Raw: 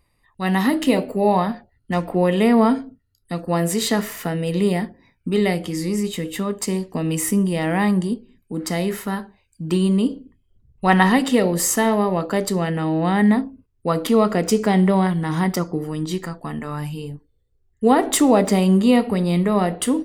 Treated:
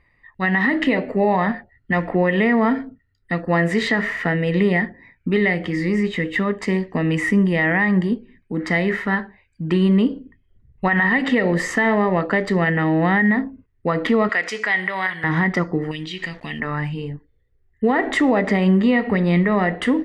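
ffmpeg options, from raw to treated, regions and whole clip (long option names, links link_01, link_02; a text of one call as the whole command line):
ffmpeg -i in.wav -filter_complex "[0:a]asettb=1/sr,asplit=3[link_01][link_02][link_03];[link_01]atrim=end=14.294[link_04];[link_02]atrim=start=14.29:end=15.24,asetpts=PTS-STARTPTS,afade=type=in:duration=0.004:curve=qsin,afade=type=out:start_time=0.946:duration=0.004:curve=qsin,highpass=frequency=590:poles=1,tiltshelf=frequency=870:gain=-8.5,acompressor=threshold=-28dB:ratio=1.5:attack=3.2:release=140:knee=1:detection=peak[link_05];[link_03]atrim=start=15.236[link_06];[link_04][link_05]acrossfade=duration=0.004:curve1=hsin:curve2=qsin[link_07];[link_07][link_06]acrossfade=duration=0.004:curve1=qsin:curve2=hsin,asettb=1/sr,asplit=3[link_08][link_09][link_10];[link_08]atrim=end=15.914[link_11];[link_09]atrim=start=15.91:end=16.6,asetpts=PTS-STARTPTS,afade=type=in:duration=0.004:curve=qsin,afade=type=out:start_time=0.686:duration=0.004:curve=qsin,highshelf=frequency=2000:width_type=q:width=3:gain=12,acompressor=threshold=-31dB:ratio=3:attack=3.2:release=140:knee=1:detection=peak,aeval=exprs='val(0)*gte(abs(val(0)),0.00473)':channel_layout=same[link_12];[link_10]atrim=start=16.596[link_13];[link_11][link_12]acrossfade=duration=0.004:curve1=hsin:curve2=qsin[link_14];[link_14][link_13]acrossfade=duration=0.004:curve1=qsin:curve2=hsin,lowpass=3000,equalizer=frequency=1900:width_type=o:width=0.4:gain=14.5,alimiter=limit=-11.5dB:level=0:latency=1:release=117,volume=2.5dB" out.wav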